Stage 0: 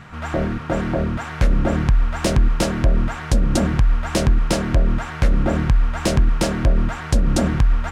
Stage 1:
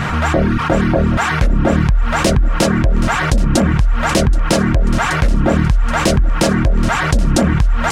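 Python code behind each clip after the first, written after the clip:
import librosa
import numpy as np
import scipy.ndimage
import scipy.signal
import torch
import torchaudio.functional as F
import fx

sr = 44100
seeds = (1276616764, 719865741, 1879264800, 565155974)

y = fx.dereverb_blind(x, sr, rt60_s=0.64)
y = fx.echo_thinned(y, sr, ms=777, feedback_pct=59, hz=420.0, wet_db=-16.0)
y = fx.env_flatten(y, sr, amount_pct=70)
y = F.gain(torch.from_numpy(y), 1.0).numpy()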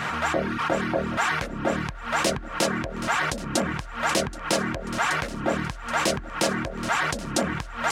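y = fx.highpass(x, sr, hz=500.0, slope=6)
y = F.gain(torch.from_numpy(y), -6.0).numpy()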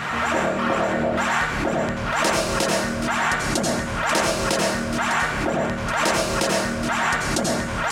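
y = fx.dereverb_blind(x, sr, rt60_s=1.6)
y = fx.rev_plate(y, sr, seeds[0], rt60_s=0.92, hf_ratio=0.9, predelay_ms=75, drr_db=-3.0)
y = fx.pre_swell(y, sr, db_per_s=31.0)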